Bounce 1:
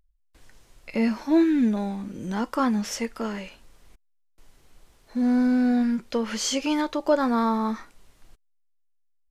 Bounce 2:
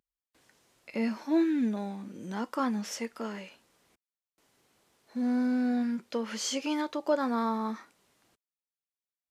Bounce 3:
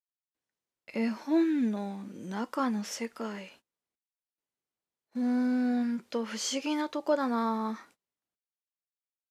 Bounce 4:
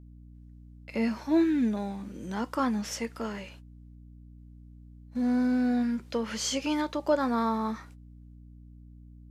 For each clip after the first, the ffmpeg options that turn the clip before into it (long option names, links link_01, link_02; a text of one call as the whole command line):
ffmpeg -i in.wav -af "highpass=170,volume=-6dB" out.wav
ffmpeg -i in.wav -af "agate=range=-27dB:threshold=-56dB:ratio=16:detection=peak" out.wav
ffmpeg -i in.wav -af "aeval=exprs='val(0)+0.00316*(sin(2*PI*60*n/s)+sin(2*PI*2*60*n/s)/2+sin(2*PI*3*60*n/s)/3+sin(2*PI*4*60*n/s)/4+sin(2*PI*5*60*n/s)/5)':channel_layout=same,volume=2dB" out.wav